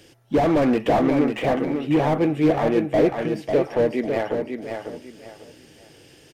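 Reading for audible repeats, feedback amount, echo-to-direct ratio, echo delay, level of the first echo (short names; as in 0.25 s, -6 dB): 3, 27%, -5.5 dB, 0.547 s, -6.0 dB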